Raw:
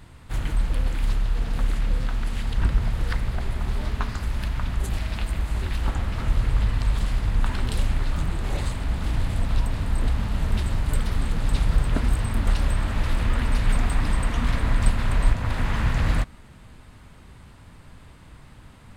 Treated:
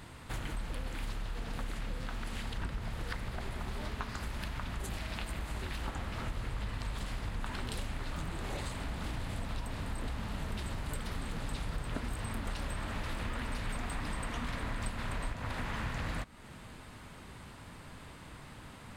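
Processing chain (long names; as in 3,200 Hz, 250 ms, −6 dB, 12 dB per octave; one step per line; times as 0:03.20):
low-shelf EQ 120 Hz −10.5 dB
downward compressor 3 to 1, threshold −39 dBFS, peak gain reduction 14 dB
level +2 dB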